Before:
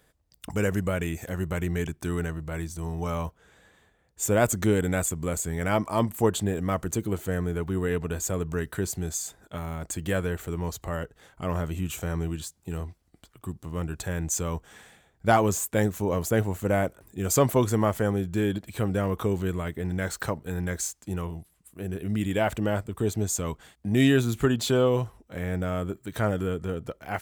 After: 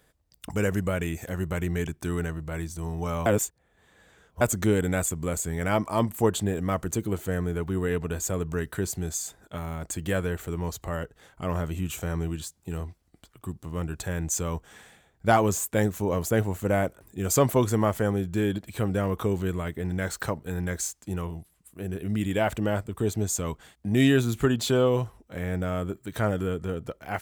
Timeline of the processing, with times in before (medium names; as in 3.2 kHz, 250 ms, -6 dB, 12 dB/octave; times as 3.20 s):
3.26–4.41 s: reverse